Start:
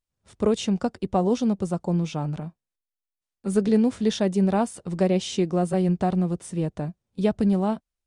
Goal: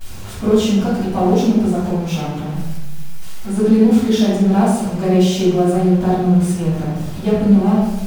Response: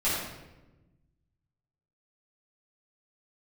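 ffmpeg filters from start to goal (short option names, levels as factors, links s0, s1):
-filter_complex "[0:a]aeval=exprs='val(0)+0.5*0.0282*sgn(val(0))':c=same[s0];[1:a]atrim=start_sample=2205,asetrate=52920,aresample=44100[s1];[s0][s1]afir=irnorm=-1:irlink=0,volume=0.596"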